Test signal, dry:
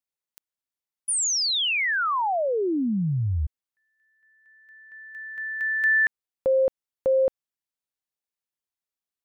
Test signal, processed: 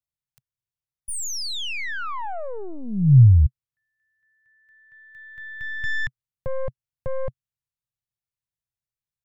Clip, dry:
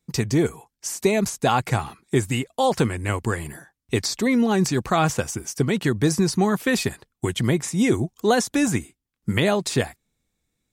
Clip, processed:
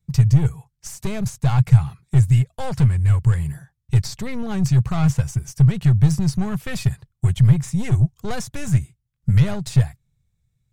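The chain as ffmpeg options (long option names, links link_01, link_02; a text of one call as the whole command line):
ffmpeg -i in.wav -af "aeval=exprs='(tanh(7.94*val(0)+0.45)-tanh(0.45))/7.94':channel_layout=same,lowshelf=frequency=190:width_type=q:width=3:gain=13.5,volume=-4dB" out.wav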